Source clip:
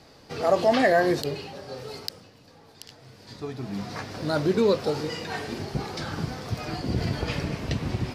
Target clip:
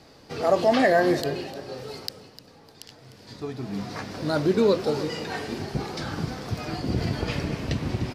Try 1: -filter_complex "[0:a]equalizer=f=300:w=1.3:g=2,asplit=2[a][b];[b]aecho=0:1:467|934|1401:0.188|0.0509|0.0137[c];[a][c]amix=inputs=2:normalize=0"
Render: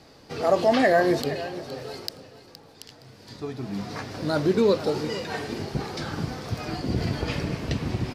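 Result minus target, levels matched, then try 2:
echo 0.165 s late
-filter_complex "[0:a]equalizer=f=300:w=1.3:g=2,asplit=2[a][b];[b]aecho=0:1:302|604|906:0.188|0.0509|0.0137[c];[a][c]amix=inputs=2:normalize=0"

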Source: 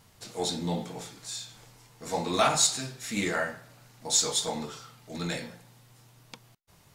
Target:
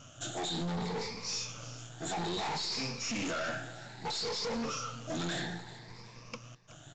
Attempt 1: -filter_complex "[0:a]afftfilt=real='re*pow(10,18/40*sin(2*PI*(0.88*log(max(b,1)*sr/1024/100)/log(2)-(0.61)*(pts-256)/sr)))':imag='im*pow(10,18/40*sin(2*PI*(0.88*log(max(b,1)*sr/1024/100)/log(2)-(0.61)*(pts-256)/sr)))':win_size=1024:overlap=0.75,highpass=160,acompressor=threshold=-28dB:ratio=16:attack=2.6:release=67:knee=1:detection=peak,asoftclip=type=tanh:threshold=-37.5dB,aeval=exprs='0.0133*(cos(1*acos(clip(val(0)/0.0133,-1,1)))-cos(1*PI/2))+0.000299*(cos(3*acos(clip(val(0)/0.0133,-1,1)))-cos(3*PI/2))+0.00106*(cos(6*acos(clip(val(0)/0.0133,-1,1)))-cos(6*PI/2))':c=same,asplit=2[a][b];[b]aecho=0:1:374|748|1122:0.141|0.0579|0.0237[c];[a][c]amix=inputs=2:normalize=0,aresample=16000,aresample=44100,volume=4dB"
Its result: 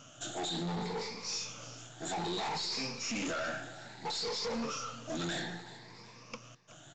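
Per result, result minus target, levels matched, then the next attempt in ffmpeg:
soft clip: distortion +7 dB; 125 Hz band -2.5 dB
-filter_complex "[0:a]afftfilt=real='re*pow(10,18/40*sin(2*PI*(0.88*log(max(b,1)*sr/1024/100)/log(2)-(0.61)*(pts-256)/sr)))':imag='im*pow(10,18/40*sin(2*PI*(0.88*log(max(b,1)*sr/1024/100)/log(2)-(0.61)*(pts-256)/sr)))':win_size=1024:overlap=0.75,highpass=160,acompressor=threshold=-28dB:ratio=16:attack=2.6:release=67:knee=1:detection=peak,asoftclip=type=tanh:threshold=-29.5dB,aeval=exprs='0.0133*(cos(1*acos(clip(val(0)/0.0133,-1,1)))-cos(1*PI/2))+0.000299*(cos(3*acos(clip(val(0)/0.0133,-1,1)))-cos(3*PI/2))+0.00106*(cos(6*acos(clip(val(0)/0.0133,-1,1)))-cos(6*PI/2))':c=same,asplit=2[a][b];[b]aecho=0:1:374|748|1122:0.141|0.0579|0.0237[c];[a][c]amix=inputs=2:normalize=0,aresample=16000,aresample=44100,volume=4dB"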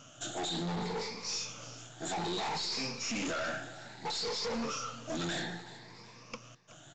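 125 Hz band -2.5 dB
-filter_complex "[0:a]afftfilt=real='re*pow(10,18/40*sin(2*PI*(0.88*log(max(b,1)*sr/1024/100)/log(2)-(0.61)*(pts-256)/sr)))':imag='im*pow(10,18/40*sin(2*PI*(0.88*log(max(b,1)*sr/1024/100)/log(2)-(0.61)*(pts-256)/sr)))':win_size=1024:overlap=0.75,acompressor=threshold=-28dB:ratio=16:attack=2.6:release=67:knee=1:detection=peak,asoftclip=type=tanh:threshold=-29.5dB,aeval=exprs='0.0133*(cos(1*acos(clip(val(0)/0.0133,-1,1)))-cos(1*PI/2))+0.000299*(cos(3*acos(clip(val(0)/0.0133,-1,1)))-cos(3*PI/2))+0.00106*(cos(6*acos(clip(val(0)/0.0133,-1,1)))-cos(6*PI/2))':c=same,asplit=2[a][b];[b]aecho=0:1:374|748|1122:0.141|0.0579|0.0237[c];[a][c]amix=inputs=2:normalize=0,aresample=16000,aresample=44100,volume=4dB"

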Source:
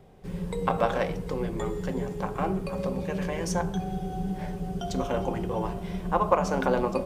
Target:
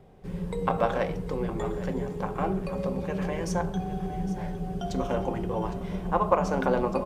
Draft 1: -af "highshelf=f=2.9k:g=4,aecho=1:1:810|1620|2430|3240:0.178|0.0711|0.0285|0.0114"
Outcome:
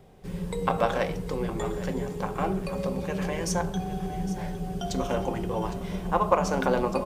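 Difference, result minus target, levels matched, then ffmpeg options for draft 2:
8000 Hz band +7.0 dB
-af "highshelf=f=2.9k:g=-5,aecho=1:1:810|1620|2430|3240:0.178|0.0711|0.0285|0.0114"

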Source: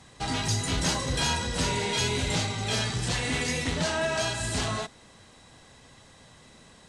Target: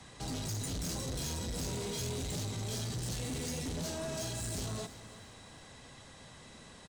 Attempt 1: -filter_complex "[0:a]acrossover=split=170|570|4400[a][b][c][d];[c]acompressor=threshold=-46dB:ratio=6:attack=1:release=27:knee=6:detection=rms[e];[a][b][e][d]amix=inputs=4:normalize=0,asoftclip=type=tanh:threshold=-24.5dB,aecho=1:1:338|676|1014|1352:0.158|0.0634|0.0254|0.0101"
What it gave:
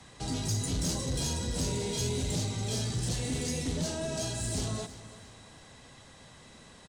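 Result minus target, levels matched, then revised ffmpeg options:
soft clip: distortion -9 dB
-filter_complex "[0:a]acrossover=split=170|570|4400[a][b][c][d];[c]acompressor=threshold=-46dB:ratio=6:attack=1:release=27:knee=6:detection=rms[e];[a][b][e][d]amix=inputs=4:normalize=0,asoftclip=type=tanh:threshold=-35dB,aecho=1:1:338|676|1014|1352:0.158|0.0634|0.0254|0.0101"

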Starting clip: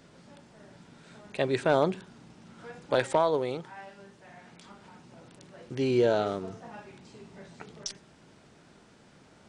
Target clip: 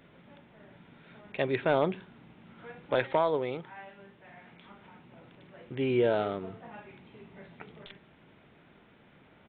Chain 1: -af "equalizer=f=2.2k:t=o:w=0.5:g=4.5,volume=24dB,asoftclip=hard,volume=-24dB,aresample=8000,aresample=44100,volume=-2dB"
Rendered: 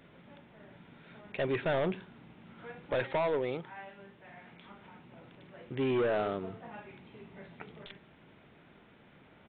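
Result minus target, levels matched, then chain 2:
overloaded stage: distortion +23 dB
-af "equalizer=f=2.2k:t=o:w=0.5:g=4.5,volume=13dB,asoftclip=hard,volume=-13dB,aresample=8000,aresample=44100,volume=-2dB"

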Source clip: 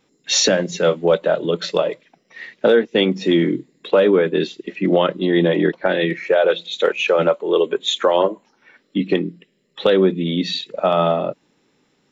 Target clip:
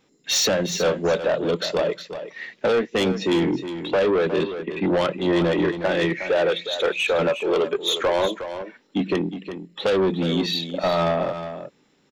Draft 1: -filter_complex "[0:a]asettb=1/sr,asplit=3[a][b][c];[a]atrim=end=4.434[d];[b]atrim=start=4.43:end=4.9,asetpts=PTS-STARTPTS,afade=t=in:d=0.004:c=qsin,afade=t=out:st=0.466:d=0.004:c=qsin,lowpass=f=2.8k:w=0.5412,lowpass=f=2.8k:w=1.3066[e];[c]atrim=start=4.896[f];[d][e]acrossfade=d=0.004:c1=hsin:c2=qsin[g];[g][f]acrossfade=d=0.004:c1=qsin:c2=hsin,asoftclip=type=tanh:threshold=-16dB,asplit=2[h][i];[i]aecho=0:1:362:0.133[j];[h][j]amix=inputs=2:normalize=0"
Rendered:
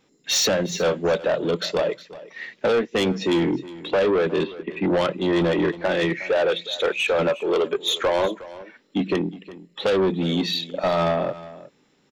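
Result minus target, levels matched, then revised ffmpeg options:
echo-to-direct -7 dB
-filter_complex "[0:a]asettb=1/sr,asplit=3[a][b][c];[a]atrim=end=4.434[d];[b]atrim=start=4.43:end=4.9,asetpts=PTS-STARTPTS,afade=t=in:d=0.004:c=qsin,afade=t=out:st=0.466:d=0.004:c=qsin,lowpass=f=2.8k:w=0.5412,lowpass=f=2.8k:w=1.3066[e];[c]atrim=start=4.896[f];[d][e]acrossfade=d=0.004:c1=hsin:c2=qsin[g];[g][f]acrossfade=d=0.004:c1=qsin:c2=hsin,asoftclip=type=tanh:threshold=-16dB,asplit=2[h][i];[i]aecho=0:1:362:0.299[j];[h][j]amix=inputs=2:normalize=0"

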